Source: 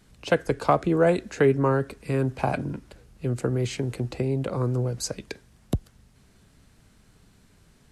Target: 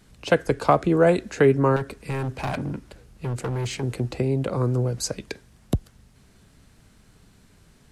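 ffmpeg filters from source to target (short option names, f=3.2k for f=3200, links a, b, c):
-filter_complex "[0:a]asettb=1/sr,asplit=3[a][b][c];[a]atrim=end=1.764[d];[b]atrim=start=1.76:end=3.83,asetpts=PTS-STARTPTS,afade=t=in:d=0.004:c=qsin,afade=t=out:st=2.066:d=0.004:c=qsin,volume=26.5dB,asoftclip=hard,volume=-26.5dB[e];[c]atrim=start=3.826[f];[d][e]acrossfade=d=0.004:c1=hsin:c2=qsin[g];[g][f]acrossfade=d=0.004:c1=qsin:c2=hsin,volume=2.5dB"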